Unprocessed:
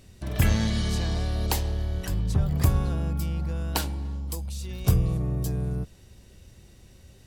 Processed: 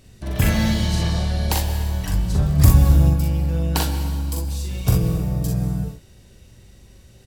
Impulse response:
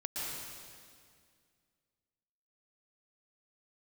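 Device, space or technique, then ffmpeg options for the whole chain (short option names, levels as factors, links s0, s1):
keyed gated reverb: -filter_complex "[0:a]asplit=3[s0][s1][s2];[1:a]atrim=start_sample=2205[s3];[s1][s3]afir=irnorm=-1:irlink=0[s4];[s2]apad=whole_len=320436[s5];[s4][s5]sidechaingate=range=0.0224:threshold=0.0112:ratio=16:detection=peak,volume=0.355[s6];[s0][s6]amix=inputs=2:normalize=0,asettb=1/sr,asplit=3[s7][s8][s9];[s7]atrim=end=2.584[s10];[s8]atrim=start=2.58:end=3.1,asetpts=PTS-STARTPTS,afade=t=in:d=0.004:c=qsin,afade=t=out:st=0.516:d=0.004:c=qsin,bass=f=250:g=6,treble=f=4000:g=6[s11];[s9]atrim=start=3.096[s12];[s10][s11]acrossfade=d=0.004:c1=hsin:c2=qsin[s13];[s13][s12]acrossfade=d=0.004:c1=qsin:c2=hsin,aecho=1:1:42|60:0.668|0.473,volume=1.12"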